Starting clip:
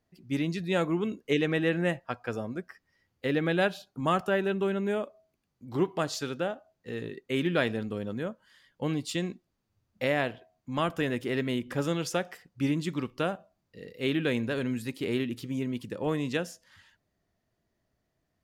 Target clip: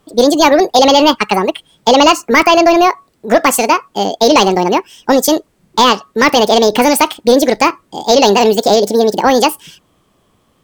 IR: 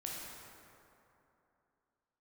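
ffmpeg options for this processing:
-af "apsyclip=15,asetrate=76440,aresample=44100,volume=0.794"

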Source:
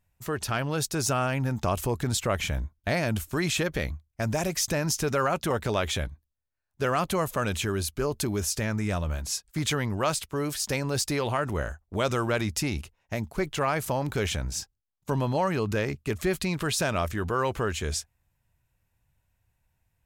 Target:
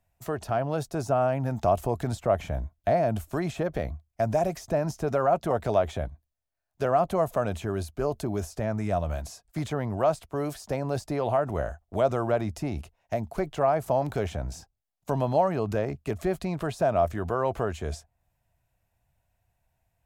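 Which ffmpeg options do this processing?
-filter_complex "[0:a]equalizer=f=680:t=o:w=0.43:g=12,acrossover=split=130|1300[s0][s1][s2];[s2]acompressor=threshold=0.00708:ratio=6[s3];[s0][s1][s3]amix=inputs=3:normalize=0,volume=0.841"

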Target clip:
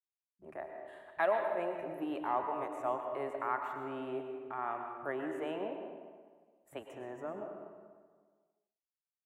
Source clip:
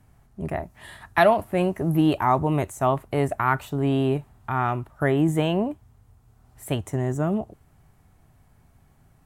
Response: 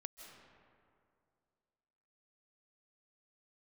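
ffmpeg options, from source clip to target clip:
-filter_complex "[0:a]agate=range=0.00891:threshold=0.00562:ratio=16:detection=peak,acrossover=split=320 2600:gain=0.0794 1 0.224[s0][s1][s2];[s0][s1][s2]amix=inputs=3:normalize=0,asetrate=42845,aresample=44100,atempo=1.0293,acrossover=split=160[s3][s4];[s4]adelay=30[s5];[s3][s5]amix=inputs=2:normalize=0[s6];[1:a]atrim=start_sample=2205,asetrate=66150,aresample=44100[s7];[s6][s7]afir=irnorm=-1:irlink=0,volume=0.708"

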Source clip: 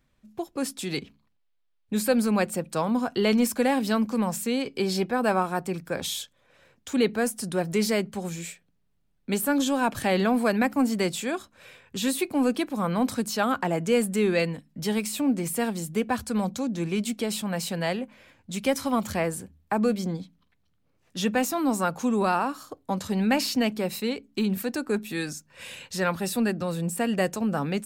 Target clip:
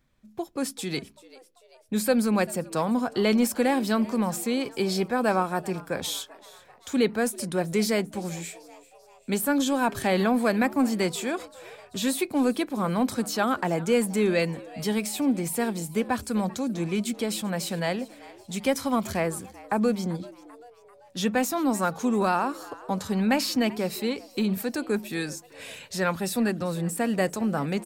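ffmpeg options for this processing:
-filter_complex "[0:a]bandreject=f=2800:w=20,asplit=5[s0][s1][s2][s3][s4];[s1]adelay=390,afreqshift=120,volume=0.0944[s5];[s2]adelay=780,afreqshift=240,volume=0.0484[s6];[s3]adelay=1170,afreqshift=360,volume=0.0245[s7];[s4]adelay=1560,afreqshift=480,volume=0.0126[s8];[s0][s5][s6][s7][s8]amix=inputs=5:normalize=0"

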